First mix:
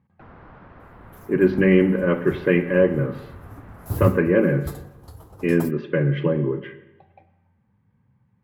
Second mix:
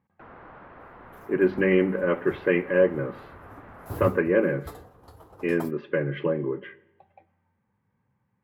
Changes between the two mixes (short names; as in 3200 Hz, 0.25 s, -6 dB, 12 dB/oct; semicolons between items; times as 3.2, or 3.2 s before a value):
speech: send -9.5 dB; first sound: send +11.0 dB; master: add tone controls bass -10 dB, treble -9 dB